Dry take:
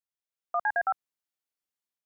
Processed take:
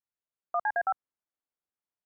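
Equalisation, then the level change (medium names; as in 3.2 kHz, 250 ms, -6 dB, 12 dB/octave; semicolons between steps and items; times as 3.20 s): low-pass 1.6 kHz 12 dB/octave; 0.0 dB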